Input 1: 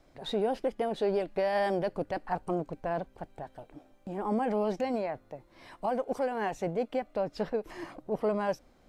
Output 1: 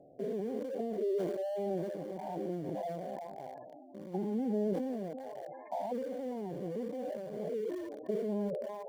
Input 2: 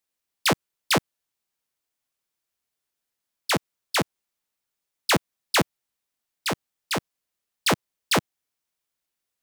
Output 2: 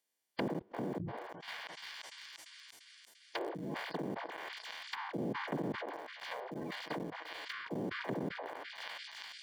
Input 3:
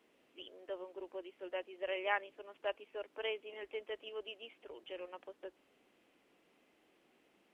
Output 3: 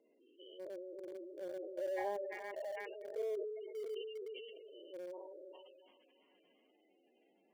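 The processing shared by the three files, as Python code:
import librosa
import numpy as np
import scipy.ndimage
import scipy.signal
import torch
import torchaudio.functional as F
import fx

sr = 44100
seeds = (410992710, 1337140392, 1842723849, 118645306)

p1 = fx.spec_steps(x, sr, hold_ms=200)
p2 = fx.low_shelf(p1, sr, hz=85.0, db=-10.5)
p3 = fx.echo_thinned(p2, sr, ms=345, feedback_pct=69, hz=800.0, wet_db=-9.0)
p4 = fx.spec_gate(p3, sr, threshold_db=-10, keep='strong')
p5 = fx.env_lowpass_down(p4, sr, base_hz=330.0, full_db=-35.0)
p6 = np.where(np.abs(p5) >= 10.0 ** (-44.5 / 20.0), p5, 0.0)
p7 = p5 + (p6 * librosa.db_to_amplitude(-9.0))
p8 = fx.notch_comb(p7, sr, f0_hz=1300.0)
p9 = fx.sustainer(p8, sr, db_per_s=33.0)
y = p9 * librosa.db_to_amplitude(2.5)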